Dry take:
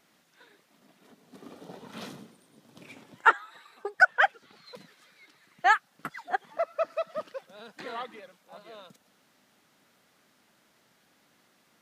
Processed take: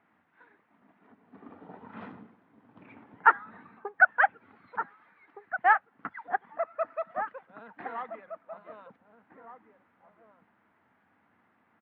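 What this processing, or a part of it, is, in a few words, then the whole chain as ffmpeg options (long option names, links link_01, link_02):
bass cabinet: -filter_complex "[0:a]highpass=69,equalizer=frequency=90:width_type=q:width=4:gain=8,equalizer=frequency=150:width_type=q:width=4:gain=-8,equalizer=frequency=380:width_type=q:width=4:gain=-5,equalizer=frequency=560:width_type=q:width=4:gain=-7,equalizer=frequency=900:width_type=q:width=4:gain=3,lowpass=frequency=2000:width=0.5412,lowpass=frequency=2000:width=1.3066,asplit=2[link_01][link_02];[link_02]adelay=1516,volume=-9dB,highshelf=frequency=4000:gain=-34.1[link_03];[link_01][link_03]amix=inputs=2:normalize=0"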